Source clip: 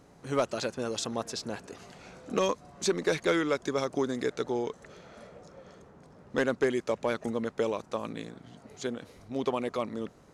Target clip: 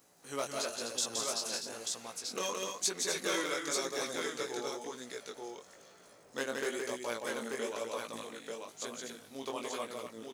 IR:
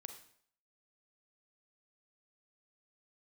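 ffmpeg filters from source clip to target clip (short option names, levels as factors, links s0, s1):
-af "aemphasis=mode=production:type=riaa,aecho=1:1:170|250|887:0.668|0.447|0.668,flanger=delay=16:depth=6.5:speed=1,volume=0.562"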